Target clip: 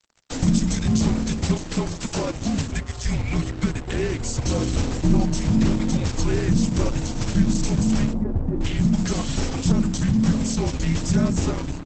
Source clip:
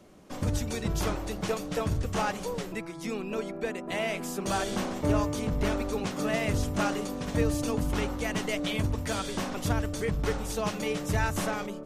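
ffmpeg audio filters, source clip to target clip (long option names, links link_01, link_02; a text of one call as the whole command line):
ffmpeg -i in.wav -filter_complex "[0:a]acrossover=split=680[link_01][link_02];[link_02]acompressor=threshold=-46dB:ratio=12[link_03];[link_01][link_03]amix=inputs=2:normalize=0,aeval=exprs='sgn(val(0))*max(abs(val(0))-0.00398,0)':channel_layout=same,asplit=3[link_04][link_05][link_06];[link_04]afade=type=out:start_time=1.56:duration=0.02[link_07];[link_05]highpass=340,afade=type=in:start_time=1.56:duration=0.02,afade=type=out:start_time=2.34:duration=0.02[link_08];[link_06]afade=type=in:start_time=2.34:duration=0.02[link_09];[link_07][link_08][link_09]amix=inputs=3:normalize=0,crystalizer=i=3:c=0,asplit=2[link_10][link_11];[link_11]alimiter=level_in=1.5dB:limit=-24dB:level=0:latency=1:release=13,volume=-1.5dB,volume=1dB[link_12];[link_10][link_12]amix=inputs=2:normalize=0,asettb=1/sr,asplit=3[link_13][link_14][link_15];[link_13]atrim=end=8.134[link_16];[link_14]atrim=start=8.13:end=8.61,asetpts=PTS-STARTPTS,afade=type=in:duration=0.004:curve=qsin,afade=type=out:start_time=0.476:duration=0.004:curve=qsin,lowpass=frequency=1200:width=0.5412,lowpass=frequency=1200:width=1.3066[link_17];[link_15]atrim=start=8.606[link_18];[link_16][link_17]acrossfade=duration=0.004:curve1=hsin:curve2=qsin[link_19];[link_19][link_18]acrossfade=duration=0.004:curve1=qsin:curve2=hsin,asplit=3[link_20][link_21][link_22];[link_20]afade=type=out:start_time=9.19:duration=0.02[link_23];[link_21]asplit=2[link_24][link_25];[link_25]adelay=33,volume=-8dB[link_26];[link_24][link_26]amix=inputs=2:normalize=0,afade=type=in:start_time=9.19:duration=0.02,afade=type=out:start_time=9.71:duration=0.02[link_27];[link_22]afade=type=in:start_time=9.71:duration=0.02[link_28];[link_23][link_27][link_28]amix=inputs=3:normalize=0,afreqshift=-270,aecho=1:1:104:0.0841,volume=6dB" -ar 48000 -c:a libopus -b:a 12k out.opus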